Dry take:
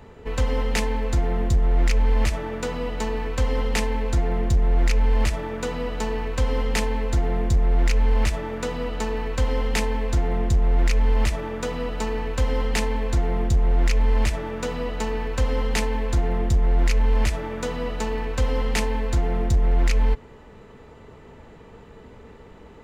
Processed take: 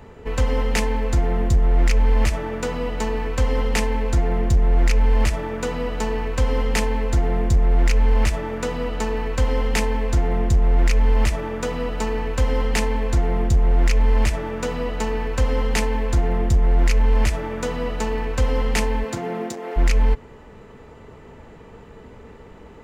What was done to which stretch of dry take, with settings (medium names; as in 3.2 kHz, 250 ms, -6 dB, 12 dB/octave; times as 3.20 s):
19.03–19.76 s: high-pass 110 Hz -> 340 Hz 24 dB/octave
whole clip: peaking EQ 3.8 kHz -3 dB 0.48 oct; trim +2.5 dB